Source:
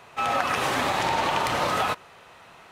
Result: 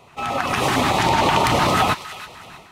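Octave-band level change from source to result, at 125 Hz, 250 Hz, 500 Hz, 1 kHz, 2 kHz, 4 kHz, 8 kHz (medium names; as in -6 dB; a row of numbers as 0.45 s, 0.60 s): +12.0 dB, +10.5 dB, +6.0 dB, +5.5 dB, +4.5 dB, +6.5 dB, +6.5 dB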